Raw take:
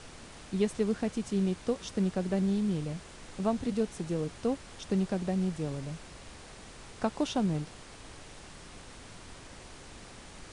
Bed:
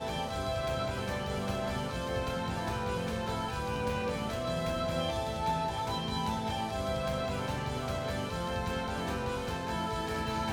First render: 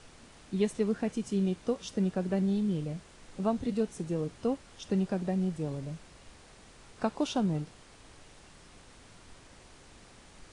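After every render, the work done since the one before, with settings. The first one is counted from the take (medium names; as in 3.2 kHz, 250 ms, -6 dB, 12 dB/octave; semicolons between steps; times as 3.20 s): noise print and reduce 6 dB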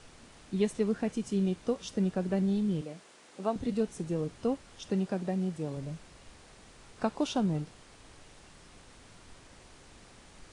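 2.81–3.56 s: high-pass 300 Hz; 4.89–5.77 s: high-pass 130 Hz 6 dB/octave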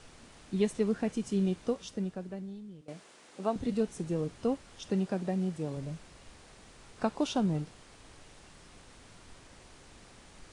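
1.64–2.88 s: fade out quadratic, to -18.5 dB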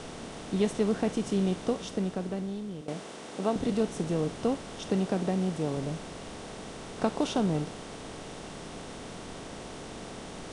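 spectral levelling over time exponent 0.6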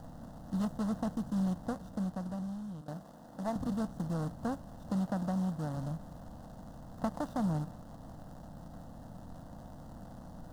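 median filter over 41 samples; static phaser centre 970 Hz, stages 4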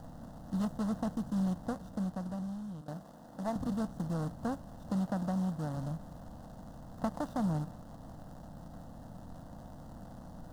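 no audible change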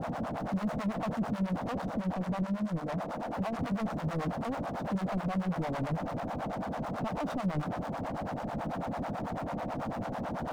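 overdrive pedal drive 41 dB, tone 1.1 kHz, clips at -21 dBFS; harmonic tremolo 9.1 Hz, depth 100%, crossover 530 Hz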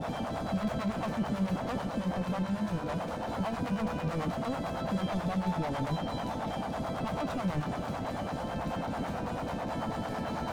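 add bed -7.5 dB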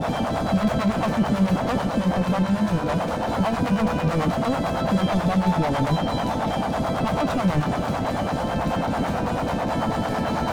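trim +10.5 dB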